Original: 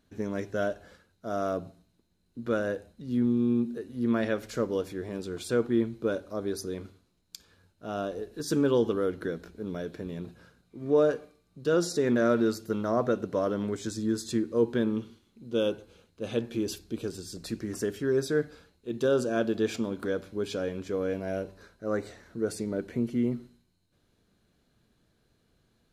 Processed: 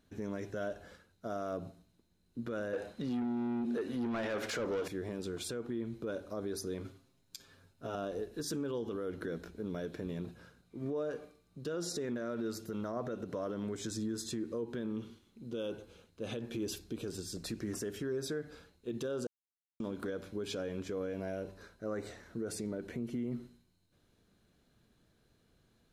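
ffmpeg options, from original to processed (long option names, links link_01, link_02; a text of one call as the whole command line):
ffmpeg -i in.wav -filter_complex "[0:a]asettb=1/sr,asplit=3[link_01][link_02][link_03];[link_01]atrim=end=2.734[link_04];[link_02]atrim=start=2.73:end=4.88,asetpts=PTS-STARTPTS,afade=type=in:duration=0.004:curve=qsin,afade=type=out:start_time=2.146:duration=0.004:curve=qsin,asplit=2[link_05][link_06];[link_06]highpass=frequency=720:poles=1,volume=23dB,asoftclip=type=tanh:threshold=-15.5dB[link_07];[link_05][link_07]amix=inputs=2:normalize=0,lowpass=frequency=2400:poles=1,volume=-6dB[link_08];[link_03]atrim=start=4.876[link_09];[link_04][link_08]acrossfade=duration=0.004:curve1=hsin:curve2=qsin[link_10];[link_10][link_09]acrossfade=duration=0.004:curve1=qsin:curve2=hsin,asettb=1/sr,asplit=3[link_11][link_12][link_13];[link_11]atrim=end=6.844[link_14];[link_12]atrim=start=6.84:end=7.95,asetpts=PTS-STARTPTS,afade=type=in:duration=0.004:curve=qsin,afade=type=out:start_time=1.106:duration=0.004:curve=qsin,aecho=1:1:7.5:0.79,atrim=end_sample=48951[link_15];[link_13]atrim=start=7.946[link_16];[link_14][link_15]acrossfade=duration=0.004:curve1=hsin:curve2=qsin[link_17];[link_17][link_16]acrossfade=duration=0.004:curve1=qsin:curve2=hsin,asplit=3[link_18][link_19][link_20];[link_18]atrim=end=19.27,asetpts=PTS-STARTPTS,afade=type=out:start_time=19.266:duration=0.004:curve=hsin[link_21];[link_19]atrim=start=19.27:end=19.8,asetpts=PTS-STARTPTS,volume=0[link_22];[link_20]atrim=start=19.8,asetpts=PTS-STARTPTS,afade=type=in:duration=0.004:curve=hsin[link_23];[link_21][link_22][link_23]concat=n=3:v=0:a=1,bandreject=frequency=4500:width=27,acompressor=threshold=-27dB:ratio=6,alimiter=level_in=4dB:limit=-24dB:level=0:latency=1:release=60,volume=-4dB,volume=-1dB" out.wav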